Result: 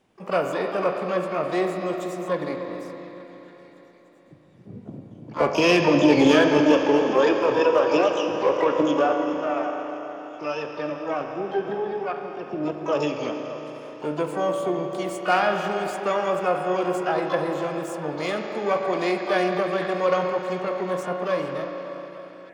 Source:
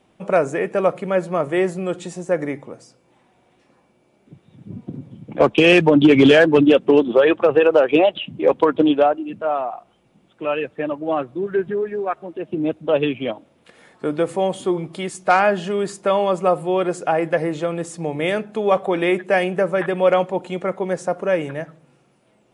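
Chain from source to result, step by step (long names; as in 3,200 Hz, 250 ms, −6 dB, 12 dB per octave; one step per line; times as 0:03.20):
echo through a band-pass that steps 292 ms, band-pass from 410 Hz, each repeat 0.7 octaves, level −11 dB
spring reverb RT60 4 s, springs 33/40 ms, chirp 45 ms, DRR 3.5 dB
pitch-shifted copies added +12 semitones −9 dB
level −7 dB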